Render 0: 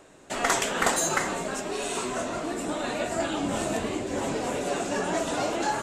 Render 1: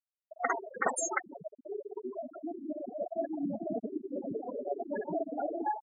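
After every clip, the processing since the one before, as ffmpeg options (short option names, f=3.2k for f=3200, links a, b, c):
-af "afftfilt=real='re*gte(hypot(re,im),0.178)':imag='im*gte(hypot(re,im),0.178)':win_size=1024:overlap=0.75,volume=-3dB"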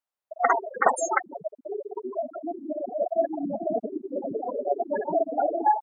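-af "equalizer=f=850:t=o:w=2.1:g=12"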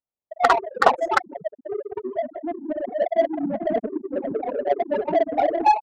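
-af "adynamicsmooth=sensitivity=1:basefreq=540,volume=5dB"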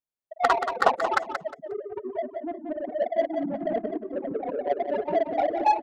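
-af "aecho=1:1:179|358|537:0.398|0.0876|0.0193,volume=-4.5dB"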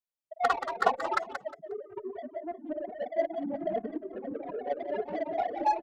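-filter_complex "[0:a]asplit=2[a][b];[b]adelay=2.4,afreqshift=2.4[c];[a][c]amix=inputs=2:normalize=1,volume=-2.5dB"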